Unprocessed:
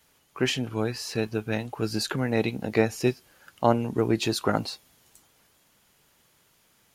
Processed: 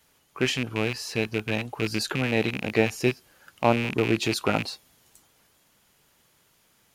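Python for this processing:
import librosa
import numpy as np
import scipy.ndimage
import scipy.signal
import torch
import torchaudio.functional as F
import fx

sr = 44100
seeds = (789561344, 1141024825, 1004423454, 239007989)

y = fx.rattle_buzz(x, sr, strikes_db=-34.0, level_db=-18.0)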